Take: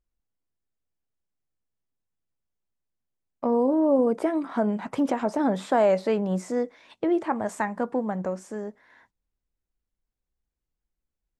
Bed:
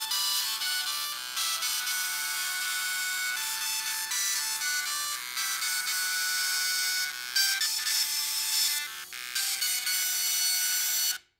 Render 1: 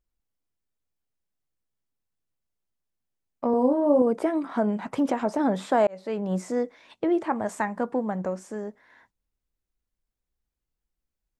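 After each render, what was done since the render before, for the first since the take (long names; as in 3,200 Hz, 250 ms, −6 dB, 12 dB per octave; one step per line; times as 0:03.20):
0:03.51–0:04.02: double-tracking delay 24 ms −4.5 dB
0:05.87–0:06.36: fade in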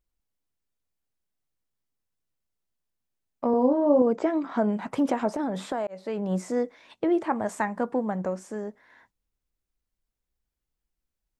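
0:03.48–0:04.69: linear-phase brick-wall low-pass 8,000 Hz
0:05.36–0:06.28: downward compressor, threshold −25 dBFS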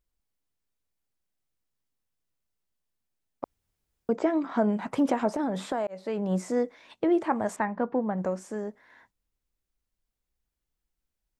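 0:03.44–0:04.09: fill with room tone
0:07.56–0:08.18: high-frequency loss of the air 250 metres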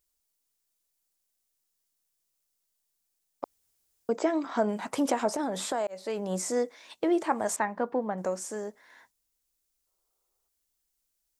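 0:09.88–0:10.48: gain on a spectral selection 340–1,400 Hz +11 dB
bass and treble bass −9 dB, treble +12 dB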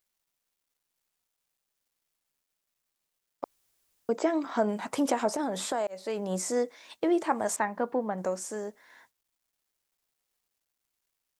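bit reduction 12 bits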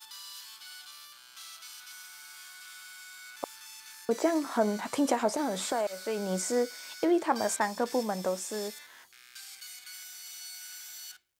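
mix in bed −17 dB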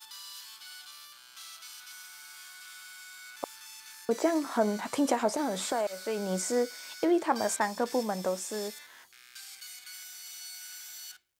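no processing that can be heard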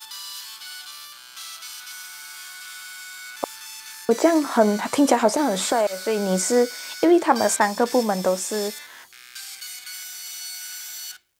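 level +9.5 dB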